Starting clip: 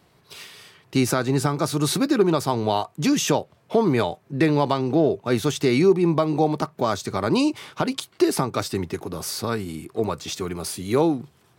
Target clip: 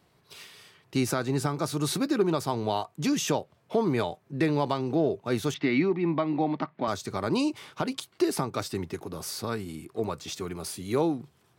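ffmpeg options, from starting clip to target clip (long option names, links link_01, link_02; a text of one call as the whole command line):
ffmpeg -i in.wav -filter_complex "[0:a]asettb=1/sr,asplit=3[link_01][link_02][link_03];[link_01]atrim=end=5.544[link_04];[link_02]atrim=start=5.54:end=6.88,asetpts=PTS-STARTPTS,afade=type=in:duration=0.004:curve=qsin,afade=type=out:start_time=1.336:duration=0.004:curve=qsin,highpass=150,equalizer=frequency=280:width_type=q:width=4:gain=6,equalizer=frequency=430:width_type=q:width=4:gain=-9,equalizer=frequency=2000:width_type=q:width=4:gain=8,lowpass=frequency=3800:width=0.5412,lowpass=frequency=3800:width=1.3066[link_05];[link_03]atrim=start=6.876[link_06];[link_04][link_05]acrossfade=duration=0.004:curve1=hsin:curve2=qsin[link_07];[link_07][link_06]acrossfade=duration=0.004:curve1=qsin:curve2=hsin,volume=-6dB" out.wav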